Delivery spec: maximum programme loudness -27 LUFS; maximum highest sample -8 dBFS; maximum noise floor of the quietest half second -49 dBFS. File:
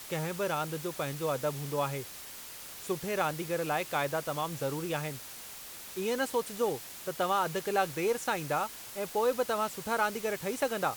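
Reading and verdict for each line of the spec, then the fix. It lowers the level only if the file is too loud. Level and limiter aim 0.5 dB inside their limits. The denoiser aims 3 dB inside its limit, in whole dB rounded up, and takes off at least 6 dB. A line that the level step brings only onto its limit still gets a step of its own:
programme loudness -33.0 LUFS: OK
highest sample -14.0 dBFS: OK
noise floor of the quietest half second -45 dBFS: fail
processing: denoiser 7 dB, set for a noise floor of -45 dBFS

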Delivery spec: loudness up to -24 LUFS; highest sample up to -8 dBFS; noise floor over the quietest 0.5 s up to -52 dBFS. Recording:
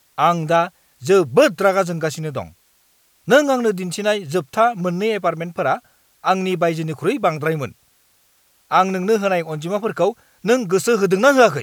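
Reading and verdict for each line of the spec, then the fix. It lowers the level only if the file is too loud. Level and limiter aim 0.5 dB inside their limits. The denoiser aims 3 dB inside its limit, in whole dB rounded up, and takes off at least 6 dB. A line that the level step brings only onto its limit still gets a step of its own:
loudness -18.5 LUFS: fail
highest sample -2.0 dBFS: fail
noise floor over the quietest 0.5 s -59 dBFS: OK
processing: gain -6 dB; limiter -8.5 dBFS

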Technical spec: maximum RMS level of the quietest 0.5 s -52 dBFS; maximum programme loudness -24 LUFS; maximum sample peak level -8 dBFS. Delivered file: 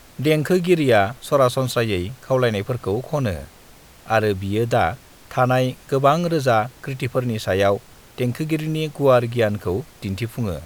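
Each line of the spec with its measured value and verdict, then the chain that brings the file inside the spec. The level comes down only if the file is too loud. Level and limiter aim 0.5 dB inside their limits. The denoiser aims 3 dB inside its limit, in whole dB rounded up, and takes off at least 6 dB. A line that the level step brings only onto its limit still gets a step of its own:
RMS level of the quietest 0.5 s -47 dBFS: fail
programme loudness -21.0 LUFS: fail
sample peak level -3.0 dBFS: fail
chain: denoiser 6 dB, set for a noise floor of -47 dBFS; gain -3.5 dB; limiter -8.5 dBFS

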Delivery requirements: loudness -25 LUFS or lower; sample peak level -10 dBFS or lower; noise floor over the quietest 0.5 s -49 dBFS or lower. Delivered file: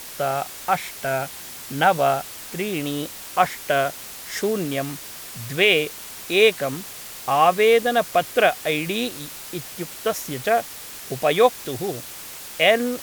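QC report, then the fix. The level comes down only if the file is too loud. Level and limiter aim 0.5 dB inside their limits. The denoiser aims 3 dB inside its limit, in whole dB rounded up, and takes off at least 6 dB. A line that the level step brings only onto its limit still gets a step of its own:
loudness -22.0 LUFS: fail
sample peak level -4.0 dBFS: fail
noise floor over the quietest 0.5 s -37 dBFS: fail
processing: denoiser 12 dB, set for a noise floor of -37 dBFS; gain -3.5 dB; limiter -10.5 dBFS

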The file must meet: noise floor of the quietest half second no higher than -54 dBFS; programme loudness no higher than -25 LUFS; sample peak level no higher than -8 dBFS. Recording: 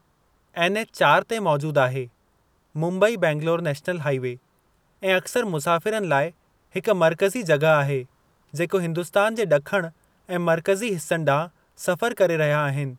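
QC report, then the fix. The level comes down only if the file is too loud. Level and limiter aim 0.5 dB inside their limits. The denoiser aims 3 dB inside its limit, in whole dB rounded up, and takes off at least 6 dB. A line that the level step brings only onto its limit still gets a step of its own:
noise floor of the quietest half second -64 dBFS: OK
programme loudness -22.5 LUFS: fail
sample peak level -5.5 dBFS: fail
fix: gain -3 dB

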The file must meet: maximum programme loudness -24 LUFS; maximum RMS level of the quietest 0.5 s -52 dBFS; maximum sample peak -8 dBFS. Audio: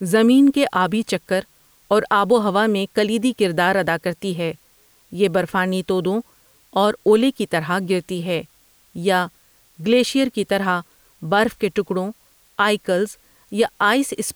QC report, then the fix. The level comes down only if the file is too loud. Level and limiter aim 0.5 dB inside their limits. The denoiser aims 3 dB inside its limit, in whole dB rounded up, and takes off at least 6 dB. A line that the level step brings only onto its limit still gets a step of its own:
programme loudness -19.5 LUFS: fail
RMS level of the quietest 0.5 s -56 dBFS: OK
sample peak -5.5 dBFS: fail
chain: gain -5 dB

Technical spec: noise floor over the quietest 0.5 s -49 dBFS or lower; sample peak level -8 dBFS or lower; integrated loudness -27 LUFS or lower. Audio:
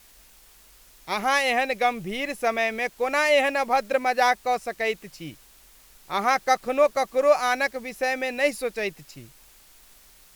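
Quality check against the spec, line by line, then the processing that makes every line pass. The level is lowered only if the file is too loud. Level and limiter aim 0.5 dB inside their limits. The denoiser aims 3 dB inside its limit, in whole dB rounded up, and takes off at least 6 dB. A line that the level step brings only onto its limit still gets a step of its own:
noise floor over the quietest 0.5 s -53 dBFS: OK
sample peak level -7.5 dBFS: fail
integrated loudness -24.0 LUFS: fail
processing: gain -3.5 dB

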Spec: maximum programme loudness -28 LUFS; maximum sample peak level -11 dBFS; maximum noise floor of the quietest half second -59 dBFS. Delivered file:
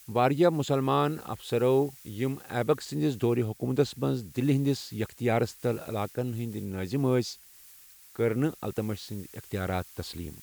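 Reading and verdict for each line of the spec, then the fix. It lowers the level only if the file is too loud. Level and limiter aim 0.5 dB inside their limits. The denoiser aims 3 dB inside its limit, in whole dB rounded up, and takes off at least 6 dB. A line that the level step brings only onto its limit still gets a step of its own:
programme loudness -29.0 LUFS: OK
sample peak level -10.0 dBFS: fail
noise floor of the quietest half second -53 dBFS: fail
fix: denoiser 9 dB, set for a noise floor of -53 dBFS; limiter -11.5 dBFS

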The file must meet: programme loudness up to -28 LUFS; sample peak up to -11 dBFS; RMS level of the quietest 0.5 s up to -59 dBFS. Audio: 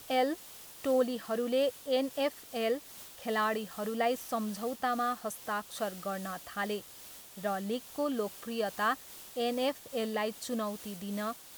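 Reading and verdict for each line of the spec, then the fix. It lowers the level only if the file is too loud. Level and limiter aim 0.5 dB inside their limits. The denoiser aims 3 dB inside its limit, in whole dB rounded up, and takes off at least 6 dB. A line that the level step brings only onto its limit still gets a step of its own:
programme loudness -34.0 LUFS: OK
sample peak -17.5 dBFS: OK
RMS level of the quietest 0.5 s -50 dBFS: fail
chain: denoiser 12 dB, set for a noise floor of -50 dBFS

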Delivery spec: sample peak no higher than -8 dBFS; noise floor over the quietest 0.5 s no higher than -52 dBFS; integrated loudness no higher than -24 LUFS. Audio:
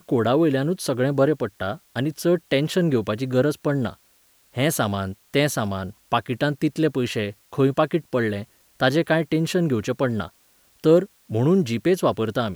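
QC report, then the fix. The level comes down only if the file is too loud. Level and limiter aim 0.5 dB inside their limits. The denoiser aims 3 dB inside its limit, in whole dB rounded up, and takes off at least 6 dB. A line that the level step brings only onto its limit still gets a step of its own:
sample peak -5.5 dBFS: fail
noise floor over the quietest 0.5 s -59 dBFS: OK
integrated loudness -22.5 LUFS: fail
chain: gain -2 dB; limiter -8.5 dBFS

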